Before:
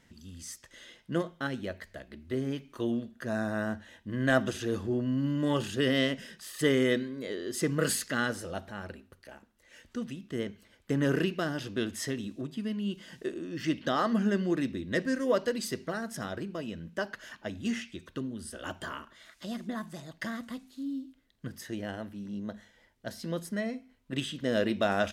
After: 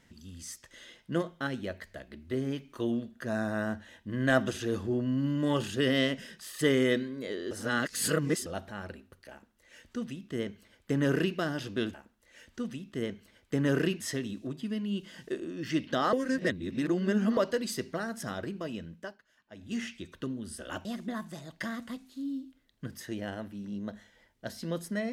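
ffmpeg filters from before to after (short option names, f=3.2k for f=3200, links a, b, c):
-filter_complex "[0:a]asplit=10[a][b][c][d][e][f][g][h][i][j];[a]atrim=end=7.512[k];[b]atrim=start=7.508:end=8.462,asetpts=PTS-STARTPTS,areverse[l];[c]atrim=start=8.458:end=11.942[m];[d]atrim=start=9.308:end=11.372[n];[e]atrim=start=11.938:end=14.072[o];[f]atrim=start=14.068:end=15.312,asetpts=PTS-STARTPTS,areverse[p];[g]atrim=start=15.308:end=17.14,asetpts=PTS-STARTPTS,afade=t=out:st=1.402:d=0.43:silence=0.0794328[q];[h]atrim=start=17.14:end=17.4,asetpts=PTS-STARTPTS,volume=-22dB[r];[i]atrim=start=17.4:end=18.792,asetpts=PTS-STARTPTS,afade=t=in:d=0.43:silence=0.0794328[s];[j]atrim=start=19.458[t];[k][l]acrossfade=d=0.004:c1=hsin:c2=hsin[u];[u][m]acrossfade=d=0.004:c1=hsin:c2=hsin[v];[v][n]acrossfade=d=0.004:c1=hsin:c2=hsin[w];[w][o]acrossfade=d=0.004:c1=hsin:c2=hsin[x];[x][p]acrossfade=d=0.004:c1=hsin:c2=hsin[y];[q][r][s]concat=n=3:v=0:a=1[z];[y][z]acrossfade=d=0.004:c1=hsin:c2=hsin[aa];[aa][t]acrossfade=d=0.004:c1=hsin:c2=hsin"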